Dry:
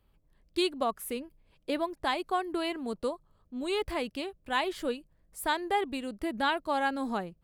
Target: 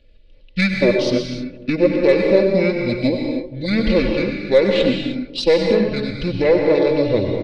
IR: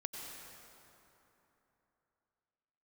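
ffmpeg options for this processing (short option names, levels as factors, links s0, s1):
-filter_complex "[0:a]firequalizer=gain_entry='entry(210,0);entry(560,-7);entry(860,9);entry(1700,-21);entry(5400,9);entry(8500,0);entry(13000,-4)':delay=0.05:min_phase=1,asetrate=23361,aresample=44100,atempo=1.88775,highshelf=f=5500:t=q:w=3:g=-11.5,asplit=2[s0][s1];[s1]alimiter=limit=0.0794:level=0:latency=1:release=39,volume=1.26[s2];[s0][s2]amix=inputs=2:normalize=0,acontrast=47,aecho=1:1:3.5:0.66,aeval=exprs='0.631*(cos(1*acos(clip(val(0)/0.631,-1,1)))-cos(1*PI/2))+0.0251*(cos(6*acos(clip(val(0)/0.631,-1,1)))-cos(6*PI/2))':c=same,asplit=2[s3][s4];[s4]adelay=239,lowpass=f=820:p=1,volume=0.15,asplit=2[s5][s6];[s6]adelay=239,lowpass=f=820:p=1,volume=0.54,asplit=2[s7][s8];[s8]adelay=239,lowpass=f=820:p=1,volume=0.54,asplit=2[s9][s10];[s10]adelay=239,lowpass=f=820:p=1,volume=0.54,asplit=2[s11][s12];[s12]adelay=239,lowpass=f=820:p=1,volume=0.54[s13];[s3][s5][s7][s9][s11][s13]amix=inputs=6:normalize=0[s14];[1:a]atrim=start_sample=2205,afade=t=out:st=0.38:d=0.01,atrim=end_sample=17199[s15];[s14][s15]afir=irnorm=-1:irlink=0,volume=1.78"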